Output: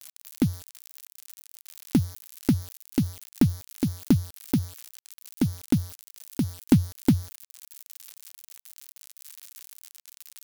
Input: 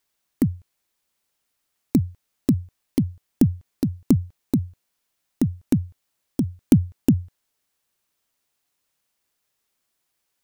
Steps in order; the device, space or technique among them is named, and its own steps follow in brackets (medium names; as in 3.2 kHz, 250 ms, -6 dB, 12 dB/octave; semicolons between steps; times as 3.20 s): budget class-D amplifier (dead-time distortion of 0.18 ms; zero-crossing glitches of -16.5 dBFS); trim -2.5 dB